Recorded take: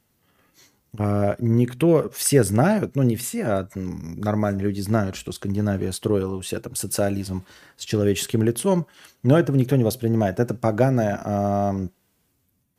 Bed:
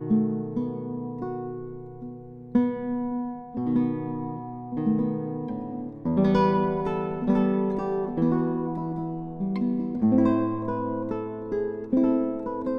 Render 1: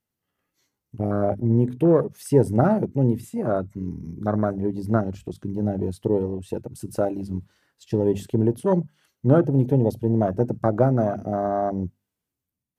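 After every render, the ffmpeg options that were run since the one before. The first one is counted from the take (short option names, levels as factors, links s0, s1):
-af "bandreject=f=50:t=h:w=6,bandreject=f=100:t=h:w=6,bandreject=f=150:t=h:w=6,bandreject=f=200:t=h:w=6,bandreject=f=250:t=h:w=6,afwtdn=0.0562"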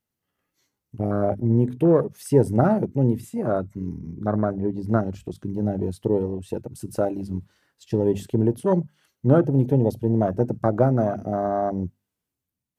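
-filter_complex "[0:a]asettb=1/sr,asplit=3[s0][s1][s2];[s0]atrim=end=3.984[s3];[s1]atrim=start=3.98:end=4.89,asetpts=PTS-STARTPTS,afade=t=in:d=0.004:c=qsin,afade=t=out:st=0.906:d=0.004:c=qsin,highshelf=f=4600:g=-10.5[s4];[s2]atrim=start=4.886[s5];[s3][s4]acrossfade=d=0.004:c1=hsin:c2=qsin[s6];[s6][s5]acrossfade=d=0.004:c1=qsin:c2=hsin"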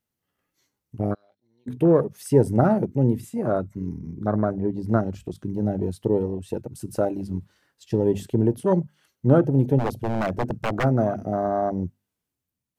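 -filter_complex "[0:a]asplit=3[s0][s1][s2];[s0]afade=t=out:st=1.13:d=0.02[s3];[s1]bandpass=f=4000:t=q:w=13,afade=t=in:st=1.13:d=0.02,afade=t=out:st=1.66:d=0.02[s4];[s2]afade=t=in:st=1.66:d=0.02[s5];[s3][s4][s5]amix=inputs=3:normalize=0,asplit=3[s6][s7][s8];[s6]afade=t=out:st=9.78:d=0.02[s9];[s7]aeval=exprs='0.133*(abs(mod(val(0)/0.133+3,4)-2)-1)':c=same,afade=t=in:st=9.78:d=0.02,afade=t=out:st=10.83:d=0.02[s10];[s8]afade=t=in:st=10.83:d=0.02[s11];[s9][s10][s11]amix=inputs=3:normalize=0"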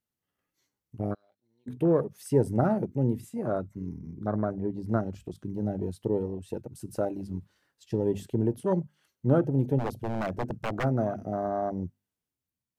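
-af "volume=0.501"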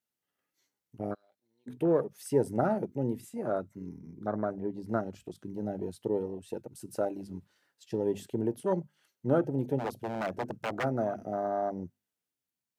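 -af "highpass=f=320:p=1,bandreject=f=1100:w=15"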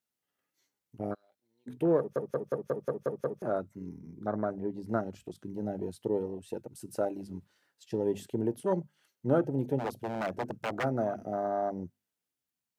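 -filter_complex "[0:a]asplit=9[s0][s1][s2][s3][s4][s5][s6][s7][s8];[s0]atrim=end=2.162[s9];[s1]atrim=start=1.978:end=2.162[s10];[s2]atrim=start=1.978:end=2.162[s11];[s3]atrim=start=1.978:end=2.162[s12];[s4]atrim=start=1.978:end=2.162[s13];[s5]atrim=start=1.978:end=2.162[s14];[s6]atrim=start=1.978:end=2.162[s15];[s7]atrim=start=1.978:end=2.162[s16];[s8]atrim=start=3.418[s17];[s9][s10]acrossfade=d=0.004:c1=hsin:c2=hsin[s18];[s18][s11]acrossfade=d=0.004:c1=hsin:c2=hsin[s19];[s19][s12]acrossfade=d=0.004:c1=hsin:c2=hsin[s20];[s20][s13]acrossfade=d=0.004:c1=hsin:c2=hsin[s21];[s21][s14]acrossfade=d=0.004:c1=hsin:c2=hsin[s22];[s22][s15]acrossfade=d=0.004:c1=hsin:c2=hsin[s23];[s23][s16]acrossfade=d=0.004:c1=hsin:c2=hsin[s24];[s24][s17]acrossfade=d=0.004:c1=hsin:c2=hsin"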